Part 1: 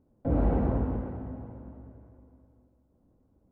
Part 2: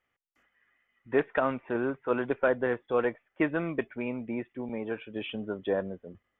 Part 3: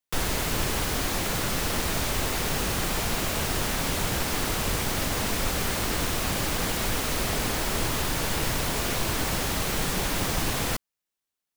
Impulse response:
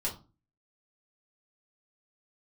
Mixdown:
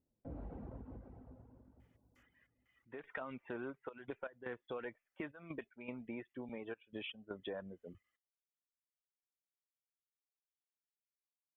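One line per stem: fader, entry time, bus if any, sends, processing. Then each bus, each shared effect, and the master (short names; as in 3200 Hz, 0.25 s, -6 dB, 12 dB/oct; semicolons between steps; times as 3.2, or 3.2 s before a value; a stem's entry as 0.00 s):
-18.0 dB, 0.00 s, no send, echo send -15 dB, ending taper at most 100 dB/s
-5.0 dB, 1.80 s, no send, no echo send, high shelf 2100 Hz +7 dB; limiter -20 dBFS, peak gain reduction 8.5 dB; step gate "xxxxxxx..xx..xx" 158 bpm -12 dB
off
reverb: off
echo: echo 0.643 s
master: reverb removal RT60 0.64 s; compressor 2.5:1, threshold -44 dBFS, peak gain reduction 9.5 dB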